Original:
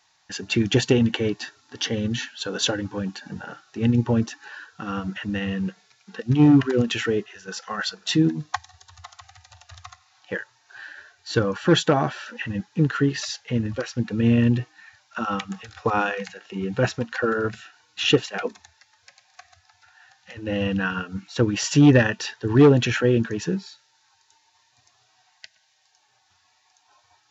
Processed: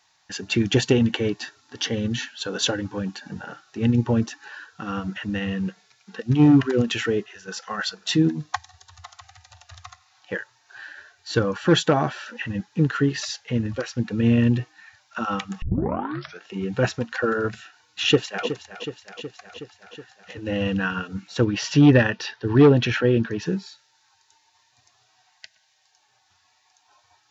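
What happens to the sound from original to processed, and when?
15.62 s: tape start 0.81 s
18.06–18.47 s: echo throw 370 ms, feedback 70%, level -11.5 dB
21.44–23.46 s: low-pass 5.4 kHz 24 dB/octave

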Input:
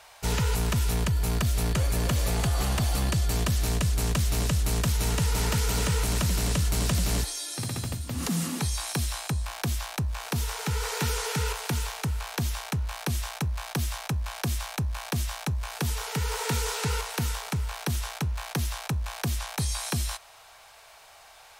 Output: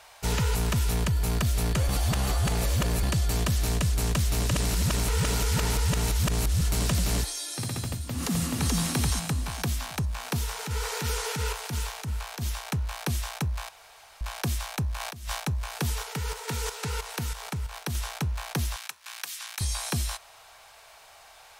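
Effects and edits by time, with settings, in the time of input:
1.89–3.03 s: reverse
4.51–6.61 s: reverse
7.91–8.76 s: echo throw 430 ms, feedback 35%, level -0.5 dB
10.37–12.67 s: transient shaper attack -10 dB, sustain -2 dB
13.69–14.21 s: room tone
15.00–15.40 s: compressor with a negative ratio -33 dBFS, ratio -0.5
16.03–17.95 s: level held to a coarse grid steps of 10 dB
18.76–19.61 s: high-pass 1.5 kHz

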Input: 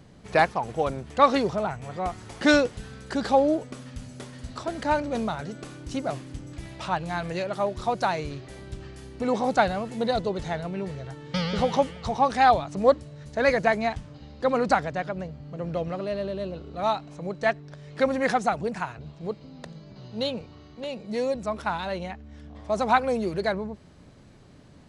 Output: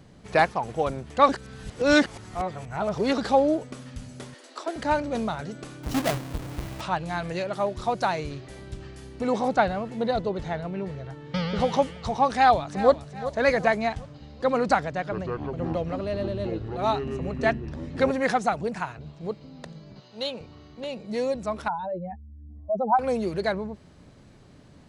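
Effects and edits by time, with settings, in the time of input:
1.29–3.18 s: reverse
4.34–4.76 s: steep high-pass 280 Hz 96 dB/octave
5.83–6.81 s: square wave that keeps the level
9.48–11.60 s: low-pass 3 kHz 6 dB/octave
12.30–12.91 s: echo throw 380 ms, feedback 40%, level -13 dB
14.85–18.11 s: ever faster or slower copies 261 ms, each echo -7 st, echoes 2
19.99–20.39 s: high-pass 980 Hz -> 410 Hz 6 dB/octave
21.68–22.99 s: spectral contrast enhancement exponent 2.6

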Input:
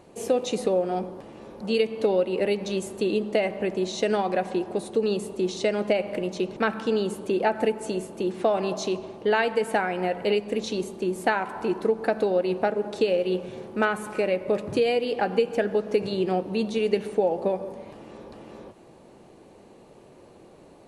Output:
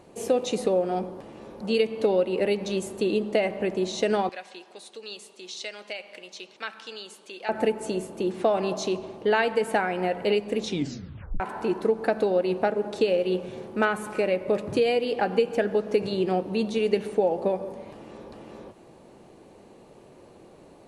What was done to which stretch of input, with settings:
4.29–7.49 s: band-pass filter 4.4 kHz, Q 0.82
10.65 s: tape stop 0.75 s

